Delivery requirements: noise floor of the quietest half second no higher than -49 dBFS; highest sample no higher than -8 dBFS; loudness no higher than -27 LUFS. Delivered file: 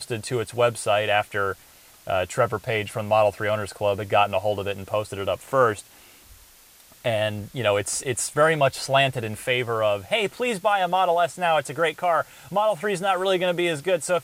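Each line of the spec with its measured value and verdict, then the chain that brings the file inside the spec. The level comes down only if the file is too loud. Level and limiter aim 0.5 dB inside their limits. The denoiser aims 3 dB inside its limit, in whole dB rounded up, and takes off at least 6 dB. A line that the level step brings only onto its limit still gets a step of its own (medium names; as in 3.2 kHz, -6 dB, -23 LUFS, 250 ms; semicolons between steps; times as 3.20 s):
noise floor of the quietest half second -52 dBFS: pass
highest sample -6.5 dBFS: fail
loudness -23.5 LUFS: fail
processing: trim -4 dB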